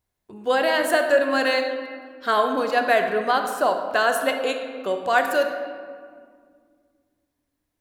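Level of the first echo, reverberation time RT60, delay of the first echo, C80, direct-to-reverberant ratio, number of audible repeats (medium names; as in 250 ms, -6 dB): no echo, 1.9 s, no echo, 7.5 dB, 5.0 dB, no echo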